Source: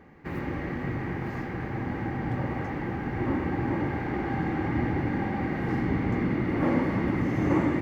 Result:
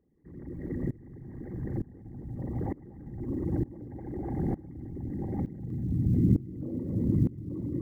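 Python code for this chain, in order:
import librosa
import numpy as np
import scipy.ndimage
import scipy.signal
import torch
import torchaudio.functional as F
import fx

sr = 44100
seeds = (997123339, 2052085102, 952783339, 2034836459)

y = fx.envelope_sharpen(x, sr, power=3.0)
y = fx.peak_eq(y, sr, hz=110.0, db=fx.steps((0.0, -3.5), (5.46, 10.5)), octaves=2.6)
y = fx.rider(y, sr, range_db=4, speed_s=2.0)
y = fx.quant_float(y, sr, bits=6)
y = y + 10.0 ** (-6.5 / 20.0) * np.pad(y, (int(243 * sr / 1000.0), 0))[:len(y)]
y = fx.tremolo_decay(y, sr, direction='swelling', hz=1.1, depth_db=22)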